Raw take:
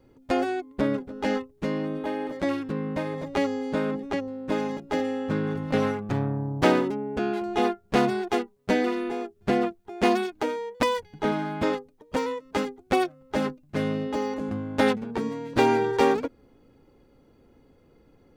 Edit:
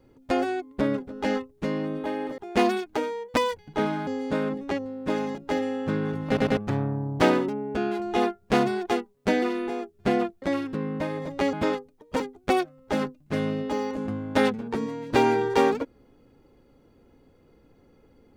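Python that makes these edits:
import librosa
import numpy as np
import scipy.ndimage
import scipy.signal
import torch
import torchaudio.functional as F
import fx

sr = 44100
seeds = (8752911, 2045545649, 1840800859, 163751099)

y = fx.edit(x, sr, fx.swap(start_s=2.38, length_s=1.11, other_s=9.84, other_length_s=1.69),
    fx.stutter_over(start_s=5.69, slice_s=0.1, count=3),
    fx.cut(start_s=12.2, length_s=0.43), tone=tone)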